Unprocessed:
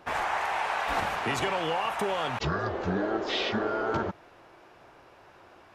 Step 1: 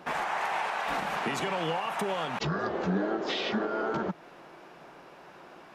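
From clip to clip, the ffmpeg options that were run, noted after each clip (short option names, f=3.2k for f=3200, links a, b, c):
-af "alimiter=level_in=1dB:limit=-24dB:level=0:latency=1:release=287,volume=-1dB,lowshelf=f=130:t=q:w=3:g=-7.5,volume=3.5dB"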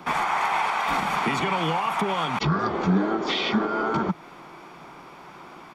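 -filter_complex "[0:a]aecho=1:1:0.9:0.47,acrossover=split=130|860|4800[a][b][c][d];[d]alimiter=level_in=15dB:limit=-24dB:level=0:latency=1:release=231,volume=-15dB[e];[a][b][c][e]amix=inputs=4:normalize=0,volume=6dB"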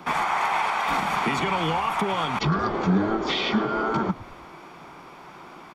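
-filter_complex "[0:a]asplit=5[a][b][c][d][e];[b]adelay=109,afreqshift=-84,volume=-18dB[f];[c]adelay=218,afreqshift=-168,volume=-23.8dB[g];[d]adelay=327,afreqshift=-252,volume=-29.7dB[h];[e]adelay=436,afreqshift=-336,volume=-35.5dB[i];[a][f][g][h][i]amix=inputs=5:normalize=0"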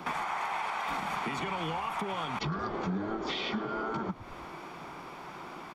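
-af "acompressor=threshold=-34dB:ratio=3"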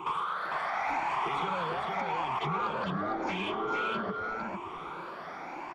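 -filter_complex "[0:a]afftfilt=real='re*pow(10,20/40*sin(2*PI*(0.68*log(max(b,1)*sr/1024/100)/log(2)-(0.87)*(pts-256)/sr)))':imag='im*pow(10,20/40*sin(2*PI*(0.68*log(max(b,1)*sr/1024/100)/log(2)-(0.87)*(pts-256)/sr)))':win_size=1024:overlap=0.75,asplit=2[a][b];[b]highpass=f=720:p=1,volume=12dB,asoftclip=type=tanh:threshold=-15.5dB[c];[a][c]amix=inputs=2:normalize=0,lowpass=f=1.4k:p=1,volume=-6dB,aecho=1:1:454:0.668,volume=-5.5dB"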